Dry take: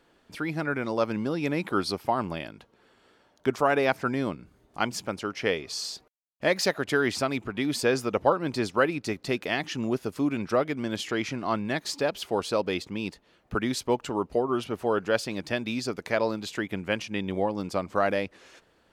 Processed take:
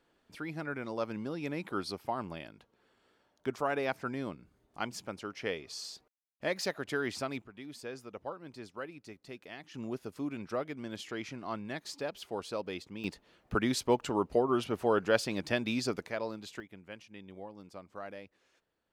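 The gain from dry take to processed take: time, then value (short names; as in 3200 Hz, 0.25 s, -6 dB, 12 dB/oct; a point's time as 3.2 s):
-9 dB
from 7.42 s -18.5 dB
from 9.74 s -10.5 dB
from 13.04 s -2 dB
from 16.06 s -10.5 dB
from 16.6 s -19 dB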